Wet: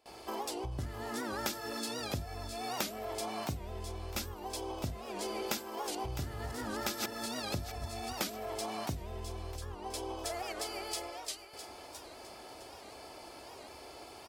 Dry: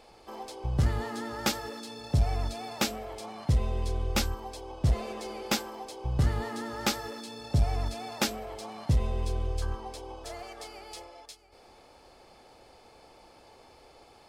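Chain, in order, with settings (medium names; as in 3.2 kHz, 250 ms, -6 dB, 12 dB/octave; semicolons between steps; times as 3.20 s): 5.62–8.13 s: chunks repeated in reverse 149 ms, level -3.5 dB; comb 3 ms, depth 35%; compression 8:1, threshold -39 dBFS, peak gain reduction 20.5 dB; treble shelf 10 kHz +10 dB; hum notches 50/100/150/200/250/300/350 Hz; gate with hold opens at -46 dBFS; high-pass 66 Hz; thinning echo 658 ms, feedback 35%, high-pass 700 Hz, level -10.5 dB; warped record 78 rpm, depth 160 cents; trim +5 dB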